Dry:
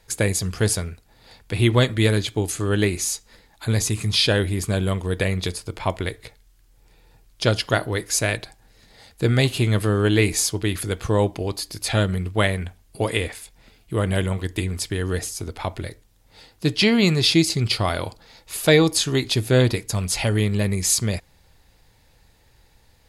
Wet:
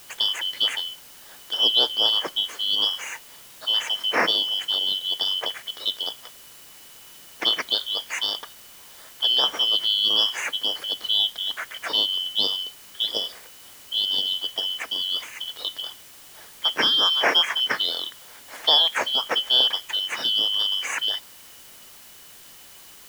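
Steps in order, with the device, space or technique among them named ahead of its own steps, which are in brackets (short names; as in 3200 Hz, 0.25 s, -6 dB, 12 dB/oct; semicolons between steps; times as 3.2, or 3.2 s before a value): split-band scrambled radio (four-band scrambler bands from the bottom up 3412; BPF 330–3300 Hz; white noise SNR 21 dB)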